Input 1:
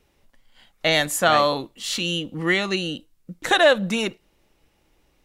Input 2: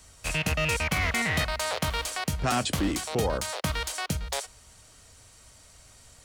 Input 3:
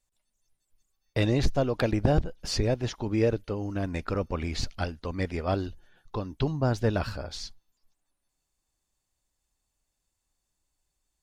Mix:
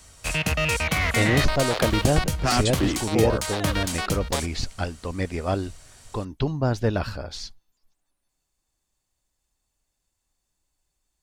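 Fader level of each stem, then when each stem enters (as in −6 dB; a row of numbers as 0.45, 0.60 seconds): −19.5, +3.0, +2.5 decibels; 0.00, 0.00, 0.00 seconds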